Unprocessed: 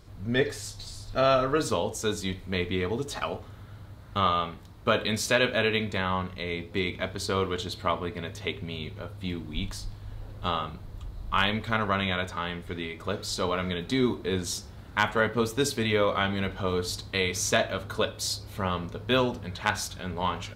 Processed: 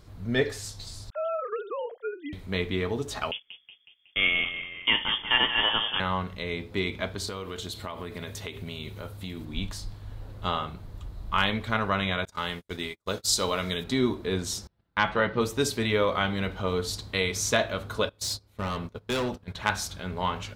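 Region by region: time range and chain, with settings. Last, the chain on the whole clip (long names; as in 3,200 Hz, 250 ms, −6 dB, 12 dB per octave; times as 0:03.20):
0:01.10–0:02.33: three sine waves on the formant tracks + downward compressor 3 to 1, threshold −28 dBFS + high-frequency loss of the air 270 metres
0:03.31–0:06.00: noise gate −39 dBFS, range −25 dB + echo with shifted repeats 184 ms, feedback 56%, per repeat +34 Hz, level −10.5 dB + voice inversion scrambler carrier 3,400 Hz
0:07.27–0:09.45: high-shelf EQ 6,800 Hz +11.5 dB + downward compressor 10 to 1, threshold −31 dBFS
0:12.25–0:13.84: noise gate −37 dBFS, range −45 dB + bass and treble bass −2 dB, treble +12 dB
0:14.67–0:15.41: comb filter 5.9 ms, depth 36% + noise gate −41 dBFS, range −29 dB + Savitzky-Golay smoothing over 15 samples
0:18.09–0:19.55: noise gate −36 dBFS, range −19 dB + hard clipping −25 dBFS
whole clip: no processing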